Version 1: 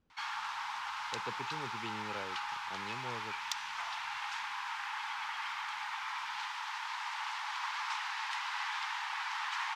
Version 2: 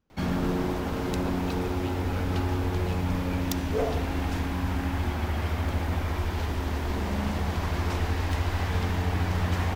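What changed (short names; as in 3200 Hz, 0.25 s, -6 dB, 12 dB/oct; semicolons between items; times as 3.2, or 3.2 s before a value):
background: remove Chebyshev high-pass 860 Hz, order 6; master: remove LPF 6100 Hz 12 dB/oct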